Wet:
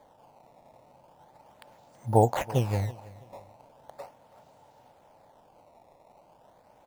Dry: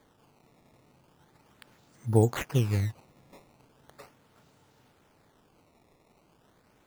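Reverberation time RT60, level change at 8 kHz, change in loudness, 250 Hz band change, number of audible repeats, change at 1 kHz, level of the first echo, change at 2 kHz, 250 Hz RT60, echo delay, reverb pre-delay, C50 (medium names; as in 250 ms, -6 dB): no reverb, -1.5 dB, +1.0 dB, -1.5 dB, 2, +10.5 dB, -20.5 dB, -1.5 dB, no reverb, 328 ms, no reverb, no reverb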